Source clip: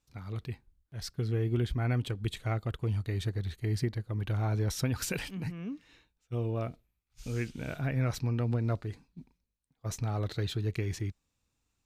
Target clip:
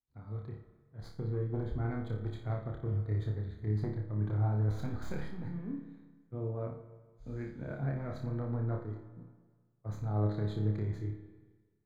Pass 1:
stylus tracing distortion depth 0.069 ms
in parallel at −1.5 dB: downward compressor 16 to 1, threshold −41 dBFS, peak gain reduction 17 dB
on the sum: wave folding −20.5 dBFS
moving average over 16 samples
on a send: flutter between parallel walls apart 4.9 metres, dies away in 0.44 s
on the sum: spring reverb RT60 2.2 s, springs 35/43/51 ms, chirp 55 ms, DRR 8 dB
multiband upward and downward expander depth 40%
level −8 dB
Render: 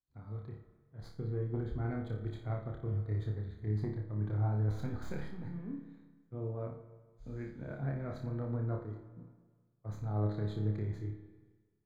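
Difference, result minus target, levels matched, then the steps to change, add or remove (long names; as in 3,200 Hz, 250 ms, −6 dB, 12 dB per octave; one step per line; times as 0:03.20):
downward compressor: peak gain reduction +8 dB
change: downward compressor 16 to 1, threshold −32.5 dBFS, peak gain reduction 9.5 dB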